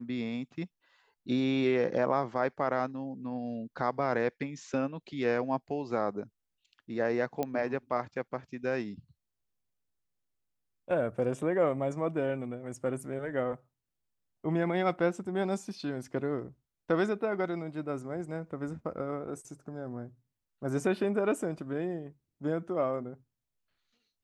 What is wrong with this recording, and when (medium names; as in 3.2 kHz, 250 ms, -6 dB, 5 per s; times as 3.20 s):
7.43 s: pop -18 dBFS